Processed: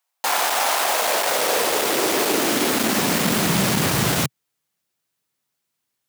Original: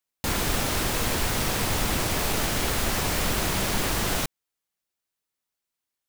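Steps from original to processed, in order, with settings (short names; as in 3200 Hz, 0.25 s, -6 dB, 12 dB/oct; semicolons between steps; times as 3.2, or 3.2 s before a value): overloaded stage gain 24 dB; high-pass sweep 770 Hz -> 130 Hz, 0.75–3.99; gain +7.5 dB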